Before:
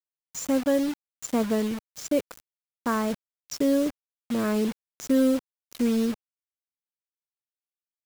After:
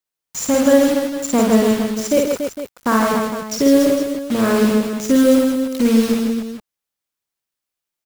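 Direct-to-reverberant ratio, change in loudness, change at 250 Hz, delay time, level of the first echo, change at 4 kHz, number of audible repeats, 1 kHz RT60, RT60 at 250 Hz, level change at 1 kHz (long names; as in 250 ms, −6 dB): no reverb audible, +10.0 dB, +10.0 dB, 54 ms, −3.0 dB, +12.0 dB, 4, no reverb audible, no reverb audible, +12.0 dB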